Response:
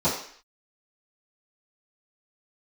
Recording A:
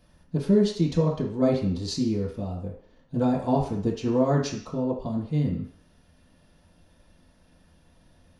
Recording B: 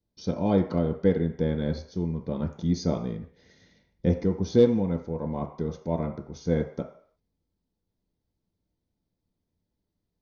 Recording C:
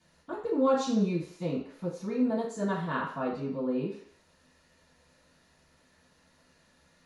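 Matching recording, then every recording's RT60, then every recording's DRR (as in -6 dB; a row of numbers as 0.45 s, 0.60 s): C; 0.55 s, 0.55 s, 0.55 s; -5.5 dB, 3.0 dB, -15.0 dB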